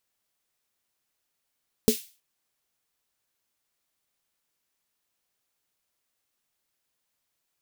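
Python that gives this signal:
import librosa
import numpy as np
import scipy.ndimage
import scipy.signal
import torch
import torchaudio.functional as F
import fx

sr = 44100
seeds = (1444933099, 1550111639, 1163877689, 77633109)

y = fx.drum_snare(sr, seeds[0], length_s=0.32, hz=230.0, second_hz=430.0, noise_db=-10.0, noise_from_hz=2500.0, decay_s=0.11, noise_decay_s=0.37)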